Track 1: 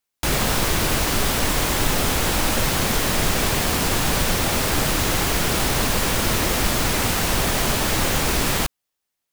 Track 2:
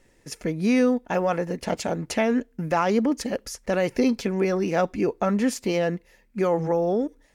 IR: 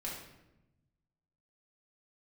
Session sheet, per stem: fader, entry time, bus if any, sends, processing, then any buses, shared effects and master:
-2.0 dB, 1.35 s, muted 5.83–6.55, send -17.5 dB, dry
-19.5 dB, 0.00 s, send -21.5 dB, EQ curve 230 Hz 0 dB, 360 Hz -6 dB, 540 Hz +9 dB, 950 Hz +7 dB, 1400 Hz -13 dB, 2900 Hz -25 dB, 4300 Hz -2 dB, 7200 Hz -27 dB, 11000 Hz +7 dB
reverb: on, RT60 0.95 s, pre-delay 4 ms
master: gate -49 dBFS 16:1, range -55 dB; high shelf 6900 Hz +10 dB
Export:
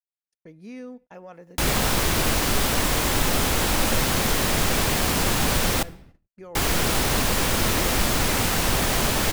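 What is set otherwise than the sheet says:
stem 2: missing EQ curve 230 Hz 0 dB, 360 Hz -6 dB, 540 Hz +9 dB, 950 Hz +7 dB, 1400 Hz -13 dB, 2900 Hz -25 dB, 4300 Hz -2 dB, 7200 Hz -27 dB, 11000 Hz +7 dB; master: missing high shelf 6900 Hz +10 dB

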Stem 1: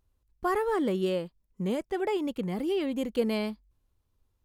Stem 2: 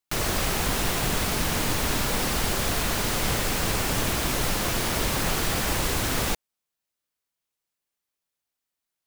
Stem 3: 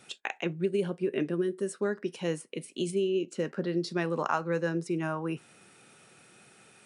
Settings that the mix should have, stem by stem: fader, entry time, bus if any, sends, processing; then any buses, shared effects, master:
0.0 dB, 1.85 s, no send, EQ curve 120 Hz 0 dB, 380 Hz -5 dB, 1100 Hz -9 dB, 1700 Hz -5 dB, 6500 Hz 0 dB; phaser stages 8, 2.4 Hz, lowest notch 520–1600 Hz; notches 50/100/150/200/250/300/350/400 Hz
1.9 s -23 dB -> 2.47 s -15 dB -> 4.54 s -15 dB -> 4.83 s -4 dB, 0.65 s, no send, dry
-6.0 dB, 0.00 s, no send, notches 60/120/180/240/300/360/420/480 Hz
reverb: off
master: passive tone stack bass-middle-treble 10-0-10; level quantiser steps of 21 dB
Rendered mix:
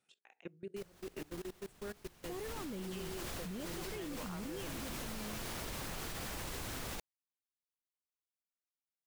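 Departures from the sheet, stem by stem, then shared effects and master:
stem 1: missing notches 50/100/150/200/250/300/350/400 Hz; stem 3 -6.0 dB -> -12.5 dB; master: missing passive tone stack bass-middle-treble 10-0-10

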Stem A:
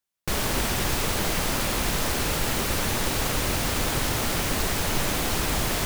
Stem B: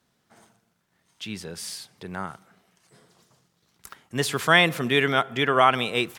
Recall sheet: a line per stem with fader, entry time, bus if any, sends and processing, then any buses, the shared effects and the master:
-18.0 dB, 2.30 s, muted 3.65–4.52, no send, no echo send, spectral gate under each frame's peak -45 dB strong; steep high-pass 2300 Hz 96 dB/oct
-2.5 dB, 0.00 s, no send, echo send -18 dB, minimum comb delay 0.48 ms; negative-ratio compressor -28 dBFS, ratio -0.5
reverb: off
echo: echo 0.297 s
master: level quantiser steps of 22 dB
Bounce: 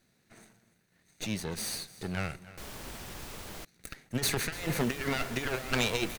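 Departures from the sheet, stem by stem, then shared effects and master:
stem A: missing steep high-pass 2300 Hz 96 dB/oct; master: missing level quantiser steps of 22 dB

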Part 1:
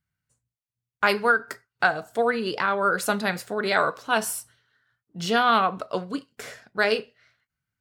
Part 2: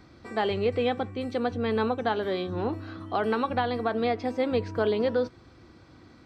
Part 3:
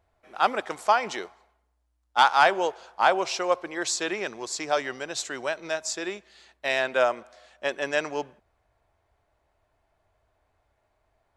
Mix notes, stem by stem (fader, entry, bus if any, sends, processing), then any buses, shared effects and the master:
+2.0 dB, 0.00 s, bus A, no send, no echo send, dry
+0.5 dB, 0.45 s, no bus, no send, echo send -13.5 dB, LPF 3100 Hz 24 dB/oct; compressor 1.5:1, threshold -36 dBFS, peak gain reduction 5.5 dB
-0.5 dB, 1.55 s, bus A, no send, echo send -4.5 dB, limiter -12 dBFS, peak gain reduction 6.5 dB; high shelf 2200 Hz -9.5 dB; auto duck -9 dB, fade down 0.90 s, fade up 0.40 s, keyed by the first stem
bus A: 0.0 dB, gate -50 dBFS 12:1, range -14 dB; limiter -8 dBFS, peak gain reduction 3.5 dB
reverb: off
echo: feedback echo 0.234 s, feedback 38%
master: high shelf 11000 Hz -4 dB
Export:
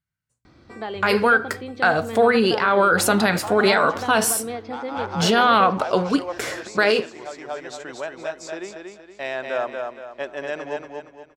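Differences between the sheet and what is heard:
stem 1 +2.0 dB -> +10.5 dB; stem 2: missing LPF 3100 Hz 24 dB/oct; stem 3: entry 1.55 s -> 2.55 s

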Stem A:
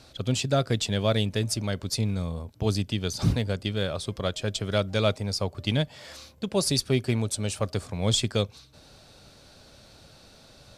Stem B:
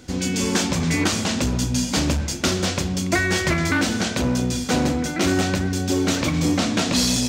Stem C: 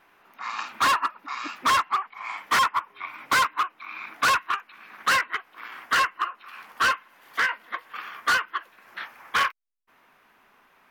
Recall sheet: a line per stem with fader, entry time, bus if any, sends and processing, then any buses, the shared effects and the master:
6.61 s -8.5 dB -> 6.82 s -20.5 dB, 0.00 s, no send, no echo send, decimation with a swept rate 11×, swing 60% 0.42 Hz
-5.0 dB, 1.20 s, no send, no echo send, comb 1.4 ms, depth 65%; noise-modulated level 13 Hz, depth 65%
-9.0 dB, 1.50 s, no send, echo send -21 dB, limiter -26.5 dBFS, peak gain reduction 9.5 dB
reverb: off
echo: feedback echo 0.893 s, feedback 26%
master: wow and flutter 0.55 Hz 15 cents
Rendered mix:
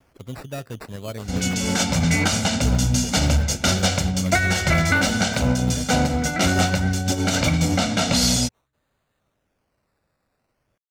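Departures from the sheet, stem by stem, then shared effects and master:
stem B -5.0 dB -> +3.0 dB; stem C: muted

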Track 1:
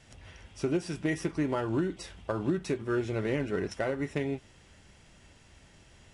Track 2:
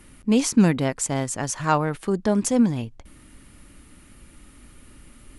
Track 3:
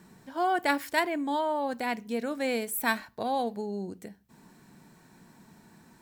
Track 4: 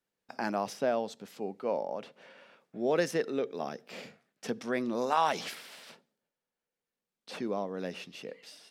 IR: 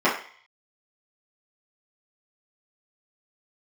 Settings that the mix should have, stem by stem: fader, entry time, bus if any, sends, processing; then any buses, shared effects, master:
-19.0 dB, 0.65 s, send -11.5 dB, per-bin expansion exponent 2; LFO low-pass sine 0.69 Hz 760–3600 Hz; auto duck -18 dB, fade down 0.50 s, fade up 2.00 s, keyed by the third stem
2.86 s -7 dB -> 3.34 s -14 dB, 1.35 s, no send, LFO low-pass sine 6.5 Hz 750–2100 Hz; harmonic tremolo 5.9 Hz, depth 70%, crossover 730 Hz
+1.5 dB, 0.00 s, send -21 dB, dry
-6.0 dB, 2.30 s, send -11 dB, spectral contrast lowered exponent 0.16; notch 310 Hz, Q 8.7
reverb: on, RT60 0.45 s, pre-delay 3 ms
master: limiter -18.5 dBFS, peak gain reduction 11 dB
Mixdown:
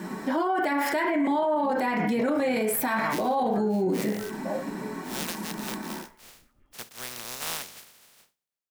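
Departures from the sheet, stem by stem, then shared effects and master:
stem 3 +1.5 dB -> +11.5 dB; stem 4: send off; reverb return +10.0 dB

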